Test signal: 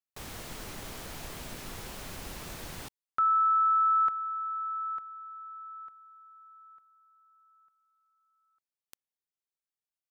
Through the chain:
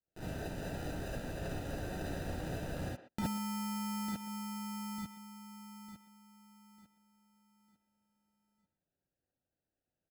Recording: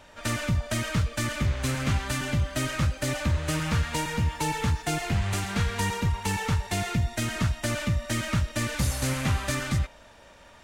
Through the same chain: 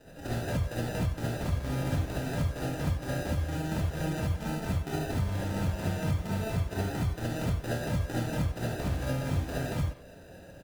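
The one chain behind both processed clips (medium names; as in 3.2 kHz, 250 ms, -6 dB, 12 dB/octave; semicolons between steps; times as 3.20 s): compression 4:1, threshold -32 dBFS; sample-and-hold 40×; Chebyshev shaper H 7 -37 dB, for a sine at -21.5 dBFS; speakerphone echo 120 ms, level -12 dB; gated-style reverb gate 90 ms rising, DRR -7 dB; trim -5.5 dB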